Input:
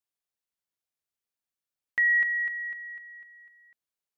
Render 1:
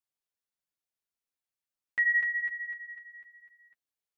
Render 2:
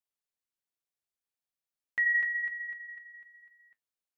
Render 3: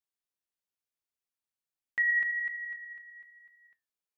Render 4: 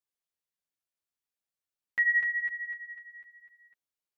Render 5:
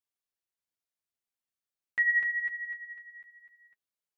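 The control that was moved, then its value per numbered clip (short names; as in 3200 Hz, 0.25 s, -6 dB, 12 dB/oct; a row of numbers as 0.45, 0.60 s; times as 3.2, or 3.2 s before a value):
flange, regen: -17, -63, +76, +5, +26%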